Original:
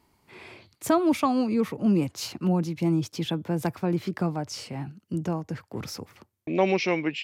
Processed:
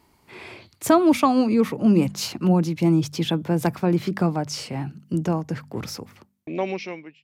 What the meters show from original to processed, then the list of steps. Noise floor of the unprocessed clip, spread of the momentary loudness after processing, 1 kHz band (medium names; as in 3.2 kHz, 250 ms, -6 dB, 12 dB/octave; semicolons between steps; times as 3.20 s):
-70 dBFS, 16 LU, +4.5 dB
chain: fade out at the end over 1.71 s; de-hum 49.12 Hz, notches 5; trim +5.5 dB